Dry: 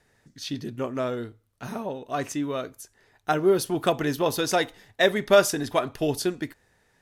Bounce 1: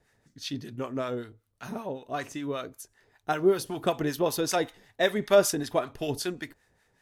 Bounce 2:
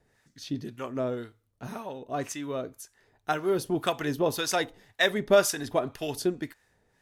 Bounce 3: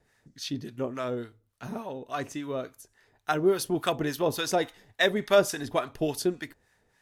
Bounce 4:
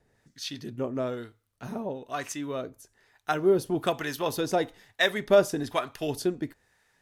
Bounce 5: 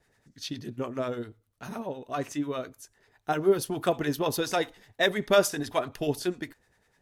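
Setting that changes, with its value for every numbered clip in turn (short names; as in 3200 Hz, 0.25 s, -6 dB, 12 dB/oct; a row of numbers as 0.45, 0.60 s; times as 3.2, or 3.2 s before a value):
harmonic tremolo, rate: 5.2, 1.9, 3.5, 1.1, 10 Hz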